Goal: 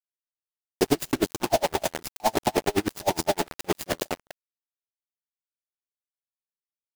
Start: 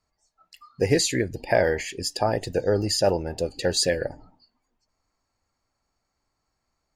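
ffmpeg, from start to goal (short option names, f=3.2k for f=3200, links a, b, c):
-af "highpass=620,aecho=1:1:1:1,aecho=1:1:249:0.316,alimiter=limit=-16.5dB:level=0:latency=1:release=16,asoftclip=type=tanh:threshold=-29.5dB,asuperstop=centerf=1700:order=20:qfactor=1.1,tiltshelf=f=970:g=10,acontrast=56,adynamicequalizer=threshold=0.00398:dfrequency=3800:dqfactor=0.89:tfrequency=3800:tqfactor=0.89:attack=5:release=100:ratio=0.375:range=2:mode=cutabove:tftype=bell,acrusher=bits=4:mix=0:aa=0.000001,aeval=exprs='val(0)*pow(10,-35*(0.5-0.5*cos(2*PI*9.7*n/s))/20)':c=same,volume=8dB"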